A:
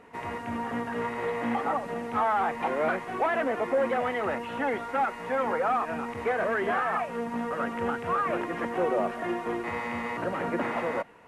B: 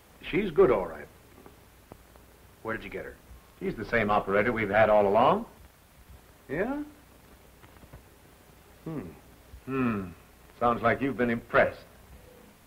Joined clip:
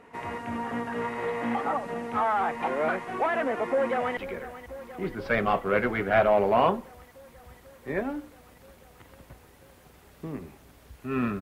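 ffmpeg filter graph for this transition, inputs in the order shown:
ffmpeg -i cue0.wav -i cue1.wav -filter_complex "[0:a]apad=whole_dur=11.41,atrim=end=11.41,atrim=end=4.172[link_01];[1:a]atrim=start=2.798:end=10.04[link_02];[link_01][link_02]acrossfade=duration=0.004:curve1=hsin:curve2=hsin,asplit=2[link_03][link_04];[link_04]afade=type=in:start_time=3.7:duration=0.01,afade=type=out:start_time=4.17:duration=0.01,aecho=0:1:490|980|1470|1960|2450|2940|3430|3920|4410|4900|5390|5880:0.199526|0.159621|0.127697|0.102157|0.0817259|0.0653808|0.0523046|0.0418437|0.0334749|0.02678|0.021424|0.0171392[link_05];[link_03][link_05]amix=inputs=2:normalize=0" out.wav

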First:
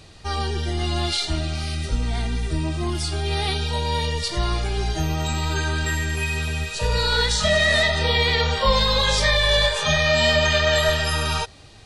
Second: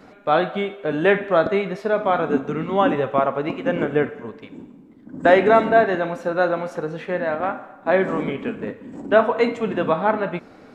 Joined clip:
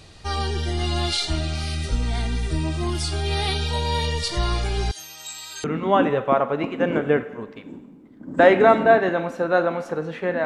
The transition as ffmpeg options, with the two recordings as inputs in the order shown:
ffmpeg -i cue0.wav -i cue1.wav -filter_complex "[0:a]asettb=1/sr,asplit=3[link_01][link_02][link_03];[link_01]atrim=end=4.914[link_04];[link_02]atrim=start=4.91:end=5.64,asetpts=PTS-STARTPTS,afade=type=in:duration=0.004:curve=qsin,afade=type=out:start_time=0.726:duration=0.004:curve=qsin,aderivative[link_05];[link_03]atrim=start=5.636[link_06];[link_04][link_05]acrossfade=duration=0.004:curve1=hsin:curve2=qsin[link_07];[link_07][link_06]acrossfade=duration=0.004:curve1=qsin:curve2=hsin,apad=whole_dur=10.45,atrim=end=10.45,atrim=end=5.642[link_08];[1:a]atrim=start=2.498:end=7.31[link_09];[link_08][link_09]acrossfade=duration=0.004:curve1=hsin:curve2=hsin" out.wav

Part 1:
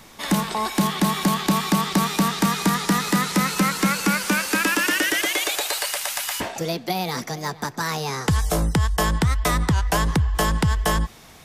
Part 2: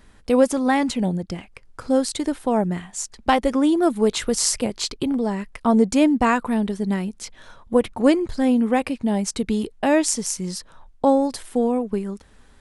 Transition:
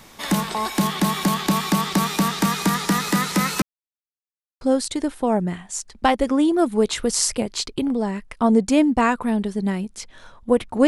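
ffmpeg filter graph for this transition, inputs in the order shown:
ffmpeg -i cue0.wav -i cue1.wav -filter_complex "[0:a]apad=whole_dur=10.87,atrim=end=10.87,asplit=2[link_01][link_02];[link_01]atrim=end=3.62,asetpts=PTS-STARTPTS,afade=type=out:start_time=3.616:duration=0.004:curve=hsin[link_03];[link_02]atrim=start=3.62:end=4.61,asetpts=PTS-STARTPTS,volume=0[link_04];[1:a]atrim=start=1.85:end=8.11,asetpts=PTS-STARTPTS,afade=type=in:duration=0.004:curve=hsin[link_05];[link_03][link_04][link_05]concat=n=3:v=0:a=1" out.wav

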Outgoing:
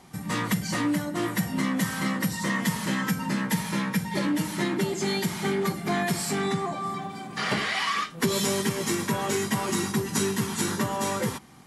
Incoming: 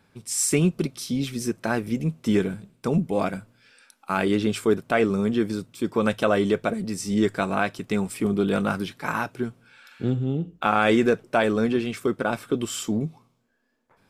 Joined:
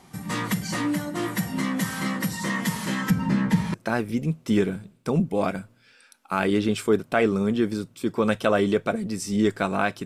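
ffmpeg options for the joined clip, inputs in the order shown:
ffmpeg -i cue0.wav -i cue1.wav -filter_complex "[0:a]asettb=1/sr,asplit=3[link_01][link_02][link_03];[link_01]atrim=end=3.104[link_04];[link_02]atrim=start=3.1:end=3.74,asetpts=PTS-STARTPTS,afade=type=in:duration=0.004:curve=qsin,afade=type=out:start_time=0.636:duration=0.004:curve=qsin,aemphasis=mode=reproduction:type=bsi[link_05];[link_03]atrim=start=3.736[link_06];[link_04][link_05]acrossfade=duration=0.004:curve1=hsin:curve2=qsin[link_07];[link_07][link_06]acrossfade=duration=0.004:curve1=qsin:curve2=hsin,apad=whole_dur=10.05,atrim=end=10.05,atrim=end=3.742[link_08];[1:a]atrim=start=1.518:end=7.83[link_09];[link_08][link_09]acrossfade=duration=0.004:curve1=hsin:curve2=hsin" out.wav

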